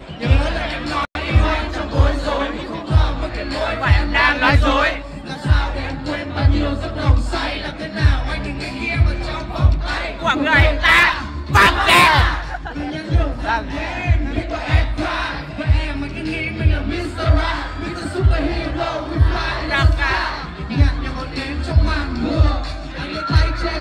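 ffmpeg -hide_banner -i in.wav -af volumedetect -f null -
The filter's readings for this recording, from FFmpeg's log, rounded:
mean_volume: -17.5 dB
max_volume: -1.5 dB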